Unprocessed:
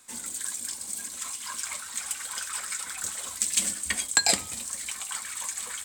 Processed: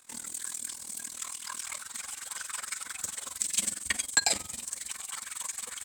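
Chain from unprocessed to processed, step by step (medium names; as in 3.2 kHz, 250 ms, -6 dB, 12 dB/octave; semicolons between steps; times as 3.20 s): AM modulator 40 Hz, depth 75%, from 1.79 s modulator 22 Hz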